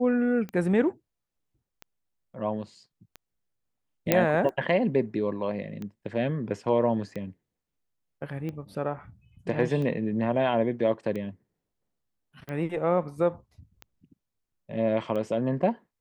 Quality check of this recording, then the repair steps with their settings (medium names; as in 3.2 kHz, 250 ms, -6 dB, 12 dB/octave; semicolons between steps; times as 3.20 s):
tick 45 rpm -24 dBFS
4.12 s: pop -6 dBFS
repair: de-click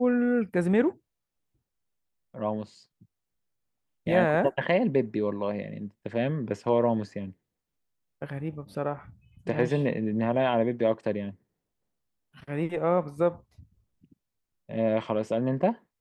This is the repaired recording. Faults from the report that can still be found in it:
nothing left